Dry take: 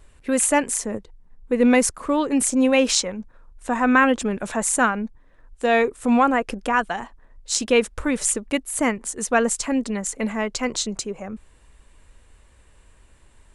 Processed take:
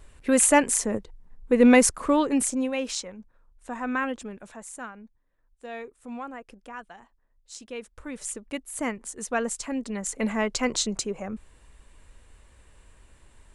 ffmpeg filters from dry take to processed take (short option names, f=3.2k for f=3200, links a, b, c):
-af "volume=19dB,afade=t=out:st=2.07:d=0.63:silence=0.251189,afade=t=out:st=4.04:d=0.6:silence=0.398107,afade=t=in:st=7.78:d=1.09:silence=0.266073,afade=t=in:st=9.83:d=0.49:silence=0.446684"